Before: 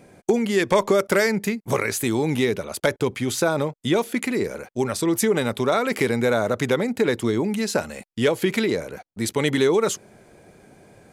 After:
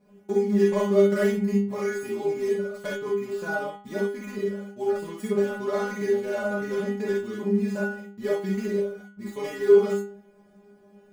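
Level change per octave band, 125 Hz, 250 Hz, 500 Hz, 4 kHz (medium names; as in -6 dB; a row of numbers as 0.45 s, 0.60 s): -5.5 dB, -4.0 dB, -1.5 dB, -14.5 dB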